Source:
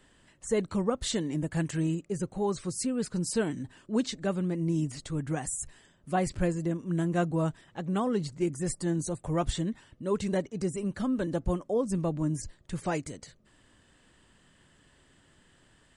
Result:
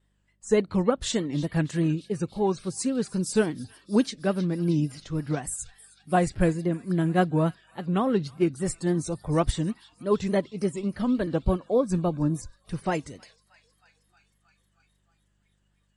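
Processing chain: on a send: thin delay 0.314 s, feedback 80%, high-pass 1800 Hz, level -14.5 dB; on the sum: vibrato 3.5 Hz 90 cents; buzz 50 Hz, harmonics 4, -55 dBFS -4 dB/oct; spectral noise reduction 15 dB; upward expander 1.5:1, over -38 dBFS; gain +6.5 dB

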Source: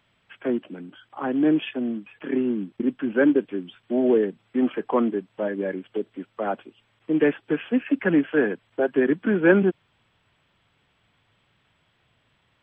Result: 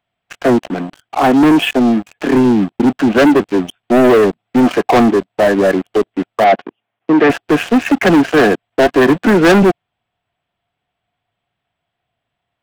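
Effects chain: bell 710 Hz +15 dB 0.22 oct; sample leveller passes 5; 6.44–7.3 BPF 150–3000 Hz; gain -1 dB

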